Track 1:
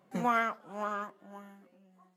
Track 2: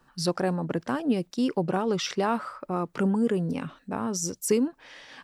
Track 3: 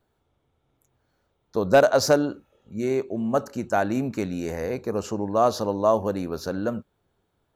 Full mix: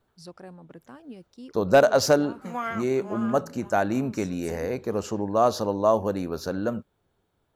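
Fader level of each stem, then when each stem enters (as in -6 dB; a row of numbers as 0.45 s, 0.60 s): -2.5 dB, -17.5 dB, -0.5 dB; 2.30 s, 0.00 s, 0.00 s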